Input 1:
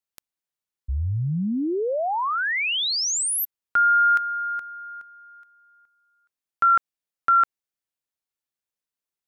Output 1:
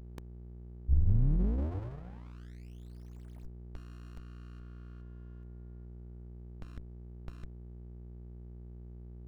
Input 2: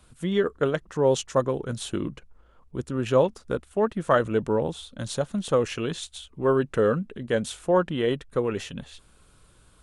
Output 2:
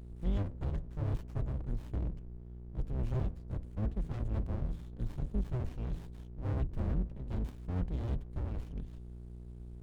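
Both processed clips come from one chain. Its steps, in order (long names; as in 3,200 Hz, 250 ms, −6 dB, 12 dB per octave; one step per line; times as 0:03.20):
sub-octave generator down 2 octaves, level −4 dB
guitar amp tone stack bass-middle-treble 10-0-1
hum removal 82.76 Hz, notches 9
mains hum 60 Hz, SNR 12 dB
windowed peak hold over 65 samples
level +8 dB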